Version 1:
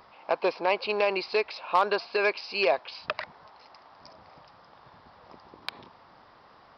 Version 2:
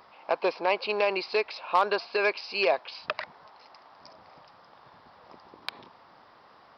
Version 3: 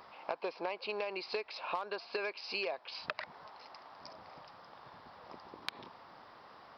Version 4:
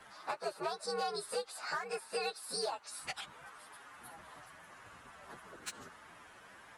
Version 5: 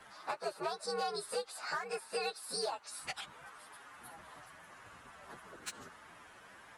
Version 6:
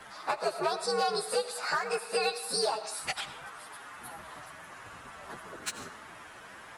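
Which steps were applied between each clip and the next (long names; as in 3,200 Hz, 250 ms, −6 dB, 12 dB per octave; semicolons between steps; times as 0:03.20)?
low-shelf EQ 110 Hz −9.5 dB
downward compressor 12 to 1, threshold −34 dBFS, peak gain reduction 17 dB
partials spread apart or drawn together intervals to 125%; level +4 dB
no processing that can be heard
convolution reverb RT60 0.65 s, pre-delay 55 ms, DRR 11 dB; level +7.5 dB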